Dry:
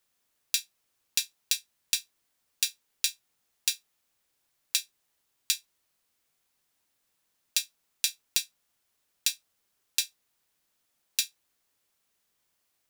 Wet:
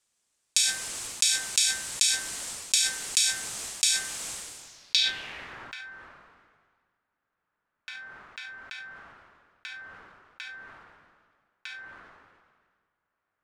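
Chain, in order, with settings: low-pass sweep 8.5 kHz -> 1.5 kHz, 4.38–5.43 s; speed mistake 25 fps video run at 24 fps; de-hum 258.7 Hz, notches 8; decay stretcher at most 34 dB/s; trim -1 dB

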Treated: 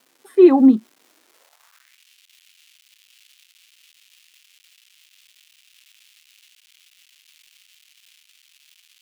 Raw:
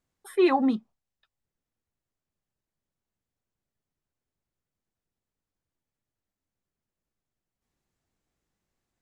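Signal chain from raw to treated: bass shelf 450 Hz +11 dB; crackle 490 per s -41 dBFS; harmonic-percussive split harmonic +3 dB; level rider gain up to 4 dB; high-pass sweep 290 Hz -> 2.8 kHz, 1.22–2.02 s; trim -5 dB

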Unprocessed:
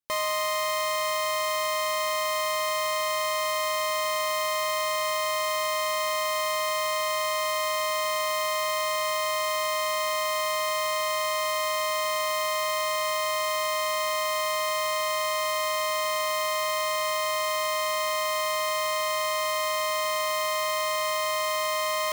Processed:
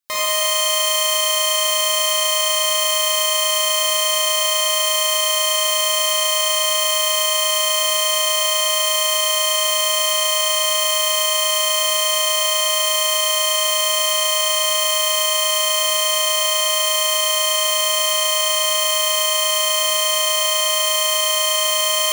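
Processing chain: tilt shelf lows -5 dB, about 1.1 kHz; Schroeder reverb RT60 1.4 s, combs from 31 ms, DRR -6 dB; trim +2.5 dB

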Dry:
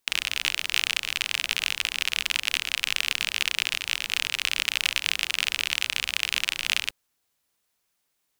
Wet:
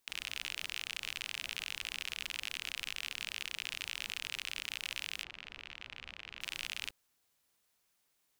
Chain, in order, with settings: in parallel at -1 dB: compressor with a negative ratio -31 dBFS; on the sum: peak limiter -11 dBFS, peak gain reduction 11.5 dB; 5.23–6.41 s: tape spacing loss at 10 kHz 28 dB; trim -8.5 dB

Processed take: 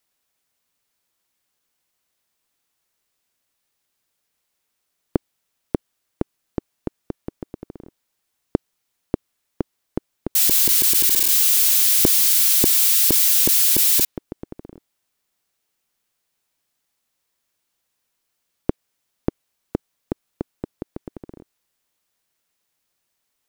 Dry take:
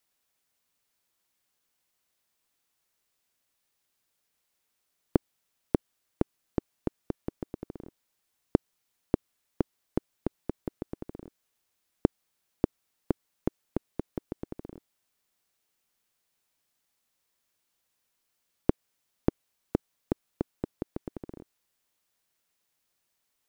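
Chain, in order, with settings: 10.35–14.05 s: zero-crossing glitches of -16 dBFS; dynamic bell 3.3 kHz, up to +5 dB, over -42 dBFS, Q 0.73; trim +3 dB

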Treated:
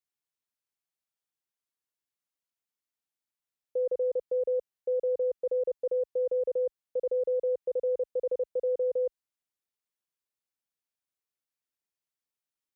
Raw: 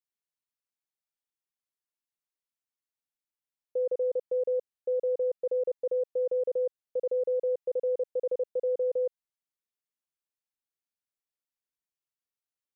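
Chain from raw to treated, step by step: high-pass 41 Hz

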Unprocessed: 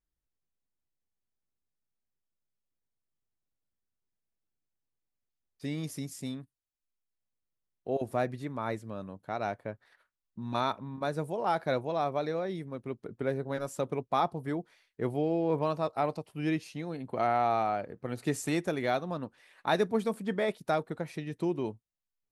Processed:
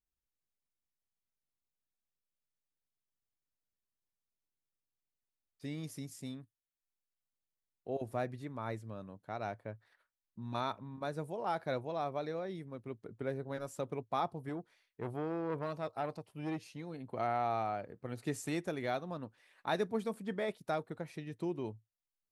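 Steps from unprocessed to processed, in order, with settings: dynamic bell 110 Hz, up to +6 dB, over -60 dBFS, Q 6.1; 14.49–16.94 s: transformer saturation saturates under 700 Hz; trim -6.5 dB

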